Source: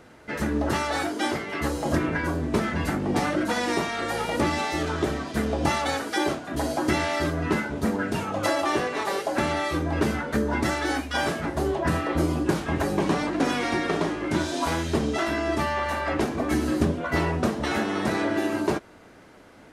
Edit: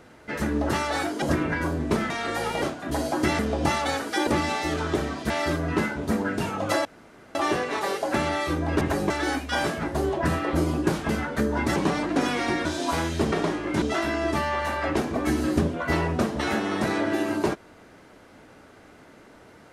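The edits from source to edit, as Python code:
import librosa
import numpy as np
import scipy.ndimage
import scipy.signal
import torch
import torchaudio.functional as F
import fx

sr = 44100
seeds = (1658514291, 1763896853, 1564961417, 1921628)

y = fx.edit(x, sr, fx.cut(start_s=1.22, length_s=0.63),
    fx.cut(start_s=2.73, length_s=1.11),
    fx.swap(start_s=4.36, length_s=1.03, other_s=6.27, other_length_s=0.77),
    fx.insert_room_tone(at_s=8.59, length_s=0.5),
    fx.swap(start_s=10.05, length_s=0.67, other_s=12.71, other_length_s=0.29),
    fx.move(start_s=13.89, length_s=0.5, to_s=15.06), tone=tone)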